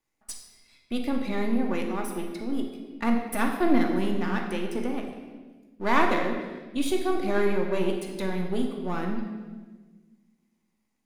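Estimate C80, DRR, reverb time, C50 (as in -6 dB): 6.5 dB, 1.5 dB, 1.4 s, 4.5 dB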